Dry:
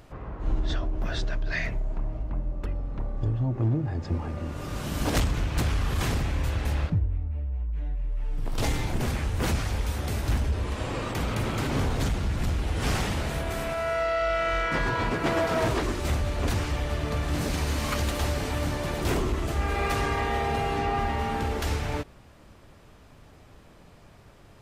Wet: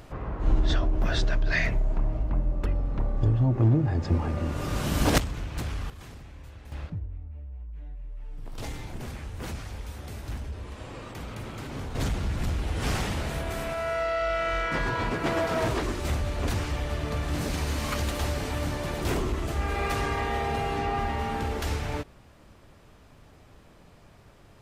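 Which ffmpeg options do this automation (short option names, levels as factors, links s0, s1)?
-af "asetnsamples=n=441:p=0,asendcmd='5.18 volume volume -6.5dB;5.9 volume volume -18dB;6.72 volume volume -9.5dB;11.95 volume volume -1.5dB',volume=1.58"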